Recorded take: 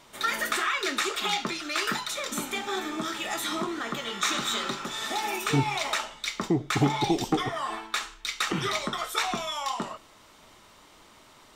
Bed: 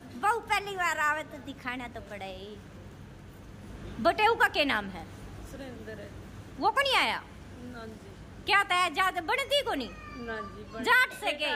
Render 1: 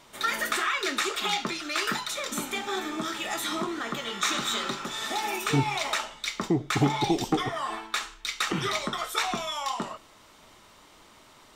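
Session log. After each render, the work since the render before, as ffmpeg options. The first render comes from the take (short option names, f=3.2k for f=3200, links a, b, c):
-af anull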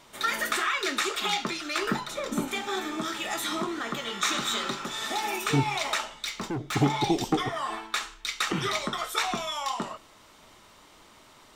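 -filter_complex "[0:a]asettb=1/sr,asplit=3[a][b][c];[a]atrim=end=1.784[d];[b]atrim=start=1.78:end=2.48,asetpts=PTS-STARTPTS,afade=t=in:d=0.004:c=qsin,afade=t=out:st=0.696:d=0.004:c=qsin,tiltshelf=f=1.1k:g=7[e];[c]atrim=start=2.476[f];[d][e]acrossfade=d=0.004:c1=hsin:c2=qsin[g];[g][f]acrossfade=d=0.004:c1=qsin:c2=hsin,asettb=1/sr,asplit=3[h][i][j];[h]atrim=end=6.274[k];[i]atrim=start=6.27:end=6.75,asetpts=PTS-STARTPTS,afade=t=in:d=0.004:c=qsin,afade=t=out:st=0.476:d=0.004:c=qsin,asoftclip=type=hard:threshold=-28.5dB[l];[j]atrim=start=6.746[m];[k][l]acrossfade=d=0.004:c1=hsin:c2=qsin[n];[n][m]acrossfade=d=0.004:c1=qsin:c2=hsin"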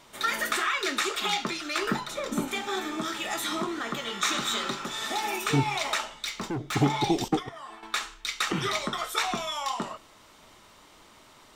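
-filter_complex "[0:a]asettb=1/sr,asplit=3[a][b][c];[a]atrim=end=7.284[d];[b]atrim=start=7.28:end=7.83,asetpts=PTS-STARTPTS,afade=t=in:d=0.004:c=qsin,afade=t=out:st=0.546:d=0.004:c=qsin,agate=range=-11dB:threshold=-28dB:ratio=16:release=100:detection=peak[e];[c]atrim=start=7.826[f];[d][e]acrossfade=d=0.004:c1=hsin:c2=qsin[g];[g][f]acrossfade=d=0.004:c1=qsin:c2=hsin"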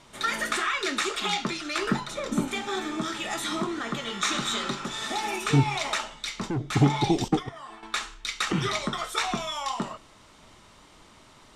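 -af "lowpass=f=11k:w=0.5412,lowpass=f=11k:w=1.3066,bass=f=250:g=6,treble=f=4k:g=0"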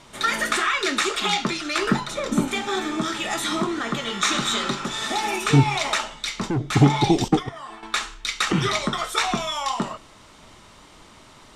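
-af "volume=5dB"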